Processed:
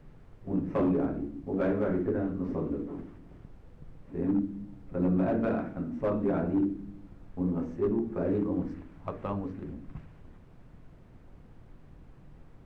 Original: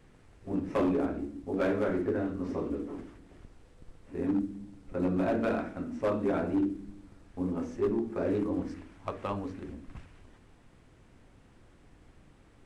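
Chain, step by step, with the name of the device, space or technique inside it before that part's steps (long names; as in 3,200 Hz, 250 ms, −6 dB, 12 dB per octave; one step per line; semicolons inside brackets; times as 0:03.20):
car interior (parametric band 150 Hz +9 dB 0.71 octaves; high-shelf EQ 4,500 Hz −6.5 dB; brown noise bed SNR 20 dB)
high-shelf EQ 2,600 Hz −10 dB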